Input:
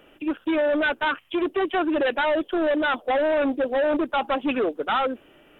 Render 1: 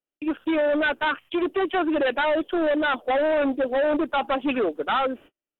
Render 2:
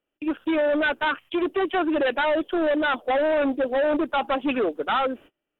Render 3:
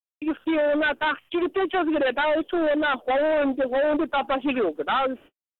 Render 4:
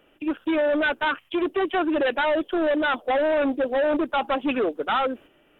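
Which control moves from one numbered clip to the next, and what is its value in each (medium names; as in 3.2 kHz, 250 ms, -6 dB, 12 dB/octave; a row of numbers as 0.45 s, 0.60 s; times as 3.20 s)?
gate, range: -43 dB, -30 dB, -60 dB, -6 dB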